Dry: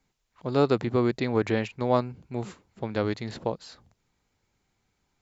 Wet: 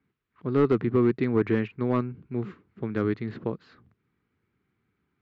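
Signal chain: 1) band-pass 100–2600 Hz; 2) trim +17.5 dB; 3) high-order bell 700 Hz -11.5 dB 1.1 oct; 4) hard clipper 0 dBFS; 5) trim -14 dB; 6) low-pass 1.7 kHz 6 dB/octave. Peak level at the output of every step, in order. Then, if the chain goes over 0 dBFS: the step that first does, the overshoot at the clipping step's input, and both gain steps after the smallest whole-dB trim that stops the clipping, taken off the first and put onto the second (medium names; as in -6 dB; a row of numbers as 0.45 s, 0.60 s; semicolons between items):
-8.5 dBFS, +9.0 dBFS, +5.0 dBFS, 0.0 dBFS, -14.0 dBFS, -14.0 dBFS; step 2, 5.0 dB; step 2 +12.5 dB, step 5 -9 dB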